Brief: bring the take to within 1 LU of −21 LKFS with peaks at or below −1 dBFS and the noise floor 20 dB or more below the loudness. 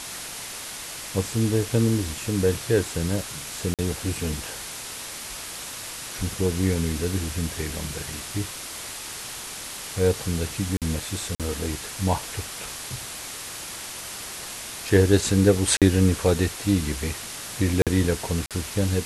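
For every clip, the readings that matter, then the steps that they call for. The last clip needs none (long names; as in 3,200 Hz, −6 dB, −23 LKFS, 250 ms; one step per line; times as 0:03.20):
number of dropouts 6; longest dropout 47 ms; background noise floor −36 dBFS; target noise floor −46 dBFS; integrated loudness −26.0 LKFS; sample peak −4.0 dBFS; target loudness −21.0 LKFS
→ repair the gap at 0:03.74/0:10.77/0:11.35/0:15.77/0:17.82/0:18.46, 47 ms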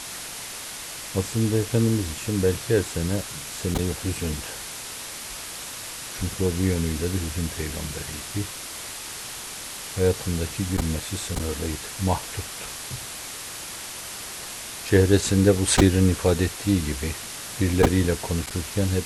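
number of dropouts 0; background noise floor −36 dBFS; target noise floor −46 dBFS
→ broadband denoise 10 dB, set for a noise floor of −36 dBFS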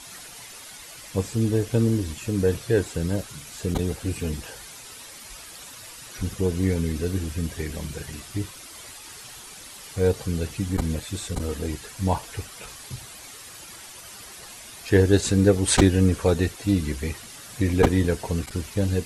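background noise floor −43 dBFS; target noise floor −45 dBFS
→ broadband denoise 6 dB, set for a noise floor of −43 dBFS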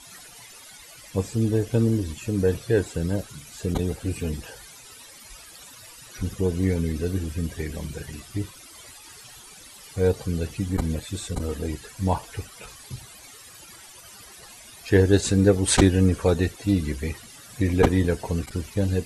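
background noise floor −46 dBFS; integrated loudness −24.5 LKFS; sample peak −2.5 dBFS; target loudness −21.0 LKFS
→ level +3.5 dB
brickwall limiter −1 dBFS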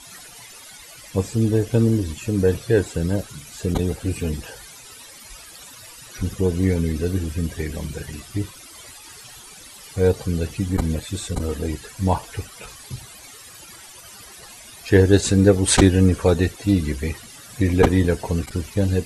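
integrated loudness −21.5 LKFS; sample peak −1.0 dBFS; background noise floor −43 dBFS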